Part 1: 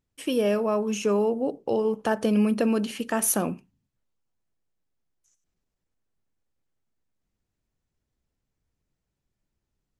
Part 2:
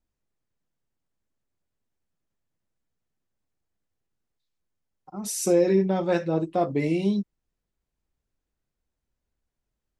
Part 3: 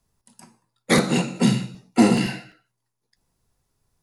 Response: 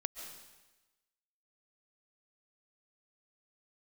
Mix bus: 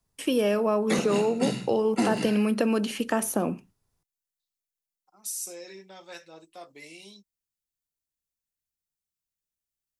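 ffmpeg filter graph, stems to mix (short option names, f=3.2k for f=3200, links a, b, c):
-filter_complex "[0:a]agate=range=-25dB:threshold=-52dB:ratio=16:detection=peak,volume=3dB[a];[1:a]aderivative,volume=0.5dB[b];[2:a]volume=-5.5dB[c];[a][b][c]amix=inputs=3:normalize=0,acrossover=split=190|970[d][e][f];[d]acompressor=threshold=-38dB:ratio=4[g];[e]acompressor=threshold=-22dB:ratio=4[h];[f]acompressor=threshold=-31dB:ratio=4[i];[g][h][i]amix=inputs=3:normalize=0"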